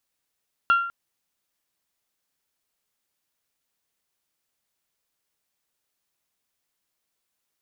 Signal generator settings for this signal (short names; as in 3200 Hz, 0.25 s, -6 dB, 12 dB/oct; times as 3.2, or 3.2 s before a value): glass hit bell, length 0.20 s, lowest mode 1380 Hz, decay 0.62 s, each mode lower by 11.5 dB, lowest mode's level -13 dB